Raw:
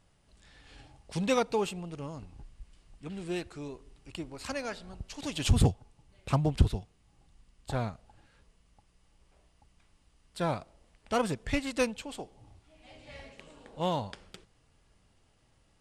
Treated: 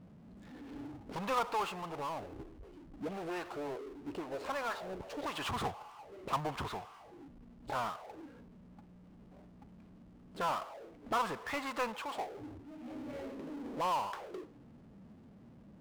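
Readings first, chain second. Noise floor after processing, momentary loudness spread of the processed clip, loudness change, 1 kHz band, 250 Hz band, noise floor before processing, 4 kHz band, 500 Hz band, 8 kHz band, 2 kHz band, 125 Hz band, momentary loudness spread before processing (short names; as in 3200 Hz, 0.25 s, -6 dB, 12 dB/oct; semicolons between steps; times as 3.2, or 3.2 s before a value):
-57 dBFS, 23 LU, -6.5 dB, +2.0 dB, -8.0 dB, -68 dBFS, -5.0 dB, -6.0 dB, -9.0 dB, -2.0 dB, -16.5 dB, 21 LU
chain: auto-wah 200–1100 Hz, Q 3.3, up, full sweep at -34 dBFS; spectral noise reduction 8 dB; power-law curve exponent 0.5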